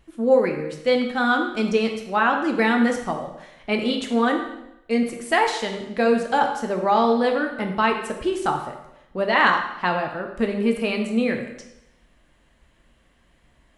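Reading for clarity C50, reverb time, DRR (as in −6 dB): 6.5 dB, 0.85 s, 3.0 dB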